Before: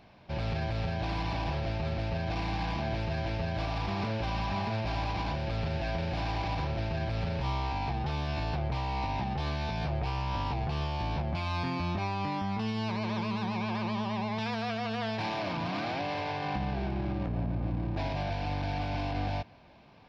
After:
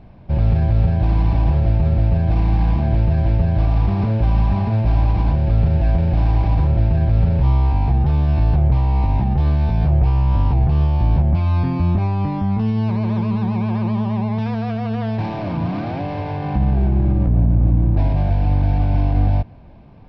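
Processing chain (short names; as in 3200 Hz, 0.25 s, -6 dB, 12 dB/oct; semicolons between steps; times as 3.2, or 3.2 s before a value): tilt -4 dB/oct; gain +4 dB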